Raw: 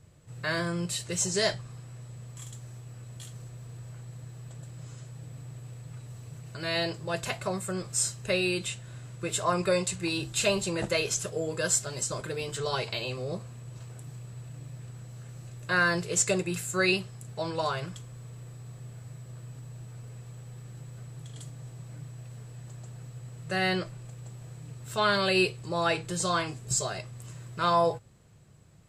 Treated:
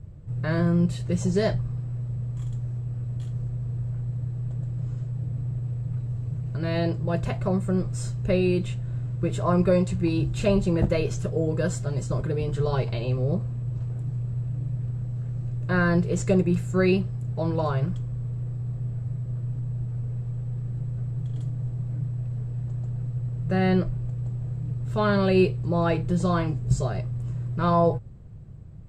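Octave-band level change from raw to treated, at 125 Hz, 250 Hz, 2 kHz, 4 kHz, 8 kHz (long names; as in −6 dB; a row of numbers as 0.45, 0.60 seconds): +13.0, +9.5, −4.0, −8.5, −13.0 decibels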